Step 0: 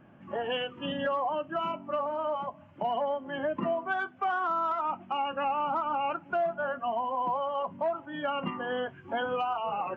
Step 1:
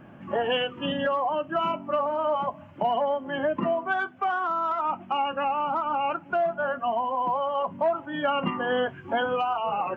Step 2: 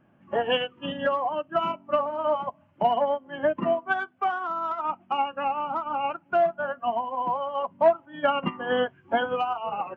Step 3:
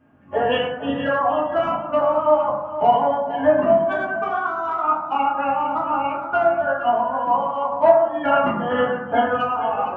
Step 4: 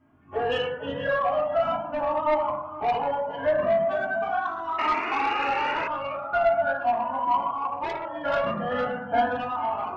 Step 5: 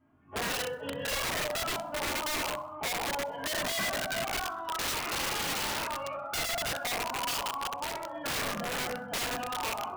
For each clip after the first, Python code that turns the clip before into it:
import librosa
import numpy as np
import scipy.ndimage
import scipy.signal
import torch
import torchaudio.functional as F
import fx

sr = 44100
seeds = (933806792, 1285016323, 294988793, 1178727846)

y1 = fx.rider(x, sr, range_db=4, speed_s=0.5)
y1 = y1 * librosa.db_to_amplitude(4.5)
y2 = fx.upward_expand(y1, sr, threshold_db=-34.0, expansion=2.5)
y2 = y2 * librosa.db_to_amplitude(6.5)
y3 = y2 + 10.0 ** (-12.5 / 20.0) * np.pad(y2, (int(460 * sr / 1000.0), 0))[:len(y2)]
y3 = fx.rev_fdn(y3, sr, rt60_s=0.98, lf_ratio=1.2, hf_ratio=0.35, size_ms=66.0, drr_db=-6.0)
y3 = y3 * librosa.db_to_amplitude(-1.0)
y4 = fx.spec_paint(y3, sr, seeds[0], shape='noise', start_s=4.78, length_s=1.1, low_hz=220.0, high_hz=2900.0, level_db=-25.0)
y4 = 10.0 ** (-13.0 / 20.0) * np.tanh(y4 / 10.0 ** (-13.0 / 20.0))
y4 = fx.comb_cascade(y4, sr, direction='rising', hz=0.41)
y5 = (np.mod(10.0 ** (22.0 / 20.0) * y4 + 1.0, 2.0) - 1.0) / 10.0 ** (22.0 / 20.0)
y5 = fx.echo_feedback(y5, sr, ms=64, feedback_pct=50, wet_db=-24.0)
y5 = y5 * librosa.db_to_amplitude(-5.5)